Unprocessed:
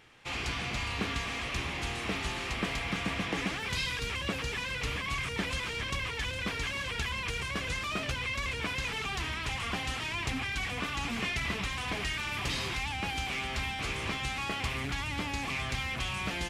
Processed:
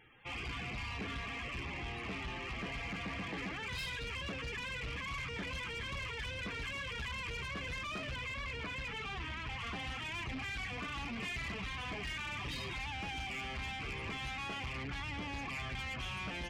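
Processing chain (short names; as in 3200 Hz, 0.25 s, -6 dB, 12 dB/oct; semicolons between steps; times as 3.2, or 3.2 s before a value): loudest bins only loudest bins 64; soft clip -34.5 dBFS, distortion -11 dB; 8.19–9.59 high shelf 7200 Hz -9.5 dB; gain -2 dB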